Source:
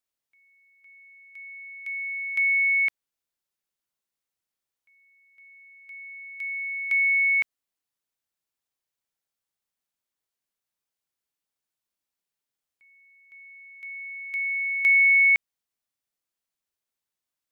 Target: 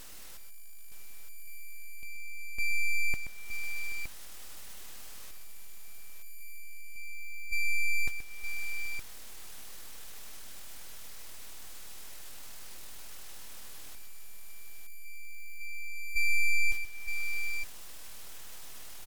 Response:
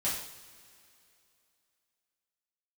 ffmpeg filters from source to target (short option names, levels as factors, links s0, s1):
-af "aeval=exprs='val(0)+0.5*0.0316*sgn(val(0))':c=same,agate=range=0.282:threshold=0.0708:ratio=16:detection=peak,acompressor=threshold=0.00631:ratio=1.5,asetrate=25476,aresample=44100,atempo=1.73107,aeval=exprs='abs(val(0))':c=same,aecho=1:1:117|717|842:0.355|0.1|0.447,asetrate=40517,aresample=44100,volume=1.58"